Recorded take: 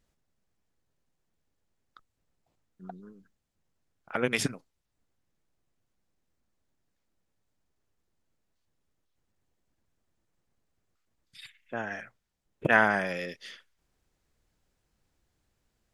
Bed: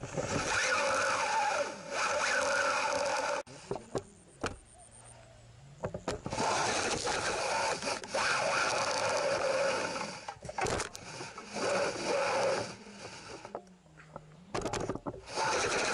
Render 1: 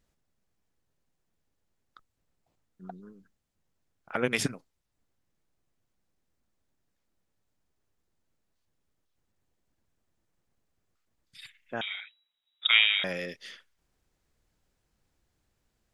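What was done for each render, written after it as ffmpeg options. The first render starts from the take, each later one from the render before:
-filter_complex "[0:a]asettb=1/sr,asplit=3[s0][s1][s2];[s0]atrim=end=11.814[s3];[s1]atrim=start=11.81:end=13.04,asetpts=PTS-STARTPTS,afade=t=in:d=0.004:c=qsin,afade=t=out:st=1.226:d=0.004:c=qsin,lowpass=f=3300:t=q:w=0.5098,lowpass=f=3300:t=q:w=0.6013,lowpass=f=3300:t=q:w=0.9,lowpass=f=3300:t=q:w=2.563,afreqshift=-3900[s4];[s2]atrim=start=13.036[s5];[s3][s4]acrossfade=d=0.004:c1=hsin:c2=qsin[s6];[s6][s5]acrossfade=d=0.004:c1=qsin:c2=hsin"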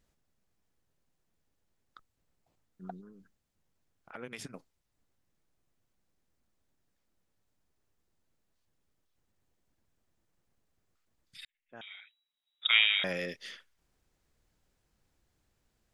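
-filter_complex "[0:a]asettb=1/sr,asplit=3[s0][s1][s2];[s0]atrim=end=3.014[s3];[s1]atrim=start=3.01:end=4.54,asetpts=PTS-STARTPTS,afade=t=in:d=0.004:c=qsin,afade=t=out:st=1.526:d=0.004:c=qsin,acompressor=threshold=0.00251:ratio=2:attack=3.2:release=140:knee=1:detection=peak[s4];[s2]atrim=start=4.536[s5];[s3][s4]acrossfade=d=0.004:c1=hsin:c2=qsin[s6];[s6][s5]acrossfade=d=0.004:c1=qsin:c2=hsin,asplit=2[s7][s8];[s7]atrim=end=11.45,asetpts=PTS-STARTPTS,afade=t=out:st=11.446:d=0.004:c=hsin[s9];[s8]atrim=start=11.45,asetpts=PTS-STARTPTS,afade=t=in:d=1.84[s10];[s9][s10]concat=n=2:v=0:a=1"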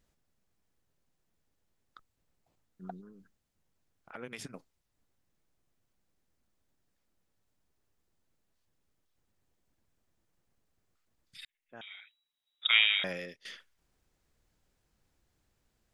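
-filter_complex "[0:a]asplit=2[s0][s1];[s0]atrim=end=13.45,asetpts=PTS-STARTPTS,afade=t=out:st=12.93:d=0.52:silence=0.177828[s2];[s1]atrim=start=13.45,asetpts=PTS-STARTPTS,afade=t=in:d=0.004:c=hsin:silence=0.177828[s3];[s2][s3]concat=n=2:v=0:a=1"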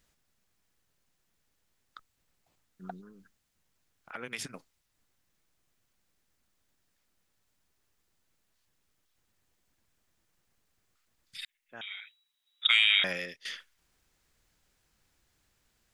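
-filter_complex "[0:a]acrossover=split=1100[s0][s1];[s1]acontrast=82[s2];[s0][s2]amix=inputs=2:normalize=0,alimiter=limit=0.266:level=0:latency=1"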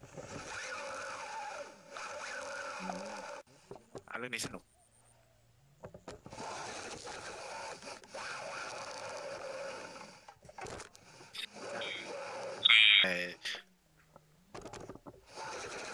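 -filter_complex "[1:a]volume=0.237[s0];[0:a][s0]amix=inputs=2:normalize=0"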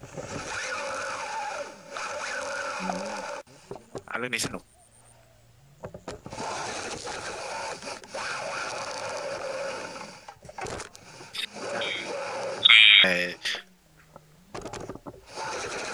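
-af "volume=3.16,alimiter=limit=0.708:level=0:latency=1"

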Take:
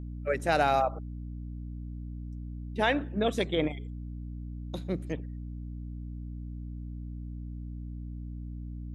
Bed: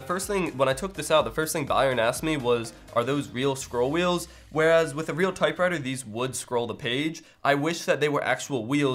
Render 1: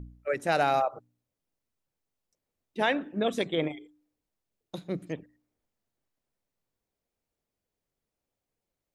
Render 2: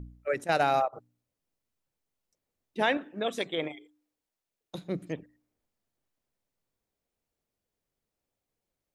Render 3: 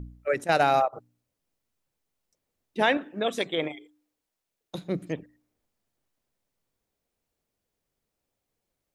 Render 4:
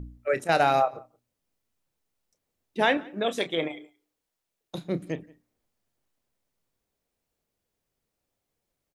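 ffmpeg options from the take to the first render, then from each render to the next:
-af "bandreject=f=60:t=h:w=4,bandreject=f=120:t=h:w=4,bandreject=f=180:t=h:w=4,bandreject=f=240:t=h:w=4,bandreject=f=300:t=h:w=4"
-filter_complex "[0:a]asettb=1/sr,asplit=3[s0][s1][s2];[s0]atrim=end=0.444[s3];[s1]atrim=start=0.44:end=0.93,asetpts=PTS-STARTPTS,afade=t=in:d=0.004:c=qsin,afade=t=out:st=0.486:d=0.004:c=qsin,agate=range=0.316:threshold=0.0447:ratio=16:release=100:detection=peak[s4];[s2]atrim=start=0.926[s5];[s3][s4]acrossfade=d=0.004:c1=hsin:c2=qsin[s6];[s6][s5]acrossfade=d=0.004:c1=qsin:c2=hsin,asettb=1/sr,asplit=3[s7][s8][s9];[s7]atrim=end=2.974[s10];[s8]atrim=start=2.97:end=4.75,asetpts=PTS-STARTPTS,afade=t=in:d=0.004:c=qsin,afade=t=out:st=1.776:d=0.004:c=qsin,lowshelf=f=310:g=-11[s11];[s9]atrim=start=4.746[s12];[s10][s11]acrossfade=d=0.004:c1=hsin:c2=qsin[s13];[s13][s12]acrossfade=d=0.004:c1=qsin:c2=hsin"
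-af "volume=1.5"
-filter_complex "[0:a]asplit=2[s0][s1];[s1]adelay=30,volume=0.237[s2];[s0][s2]amix=inputs=2:normalize=0,asplit=2[s3][s4];[s4]adelay=174.9,volume=0.0562,highshelf=f=4000:g=-3.94[s5];[s3][s5]amix=inputs=2:normalize=0"

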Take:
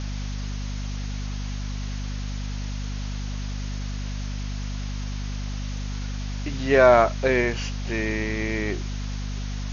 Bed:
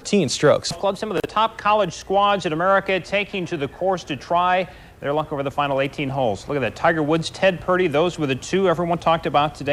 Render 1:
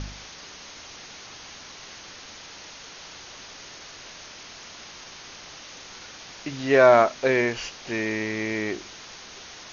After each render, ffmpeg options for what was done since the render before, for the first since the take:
-af "bandreject=f=50:t=h:w=4,bandreject=f=100:t=h:w=4,bandreject=f=150:t=h:w=4,bandreject=f=200:t=h:w=4,bandreject=f=250:t=h:w=4"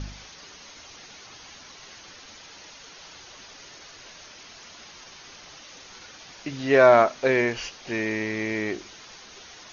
-af "afftdn=nr=6:nf=-44"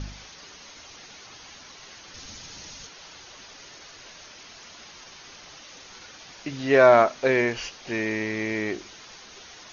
-filter_complex "[0:a]asettb=1/sr,asplit=3[s0][s1][s2];[s0]atrim=end=2.144[s3];[s1]atrim=start=2.14:end=2.87,asetpts=PTS-STARTPTS,afade=t=in:d=0.004:c=qsin,afade=t=out:st=0.726:d=0.004:c=qsin,bass=f=250:g=12,treble=f=4000:g=7[s4];[s2]atrim=start=2.866[s5];[s3][s4]acrossfade=d=0.004:c1=hsin:c2=qsin[s6];[s6][s5]acrossfade=d=0.004:c1=qsin:c2=hsin"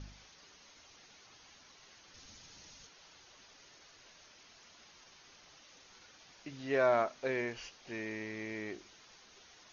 -af "volume=0.211"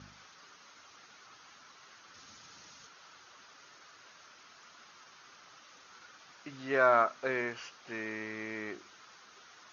-af "highpass=110,equalizer=f=1300:t=o:w=0.75:g=11"

